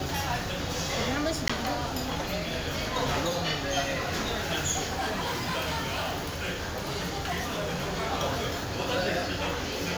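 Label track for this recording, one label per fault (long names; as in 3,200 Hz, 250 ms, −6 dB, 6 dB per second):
1.480000	1.500000	drop-out 15 ms
4.900000	8.070000	clipping −26.5 dBFS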